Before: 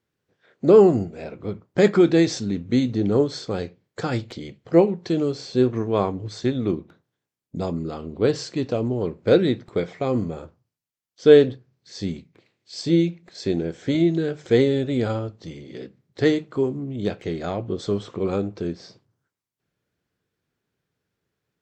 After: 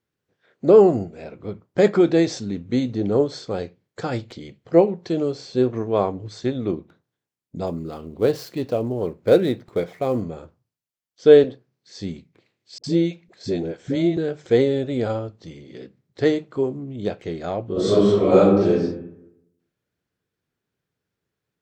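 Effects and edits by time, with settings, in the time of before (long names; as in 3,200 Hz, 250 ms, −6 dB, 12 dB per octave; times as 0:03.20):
0:07.67–0:10.22: gap after every zero crossing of 0.052 ms
0:11.44–0:11.98: high-pass filter 170 Hz
0:12.78–0:14.17: all-pass dispersion highs, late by 57 ms, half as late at 450 Hz
0:17.72–0:18.71: thrown reverb, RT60 0.9 s, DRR −11 dB
whole clip: dynamic equaliser 620 Hz, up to +6 dB, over −32 dBFS, Q 1.2; level −2.5 dB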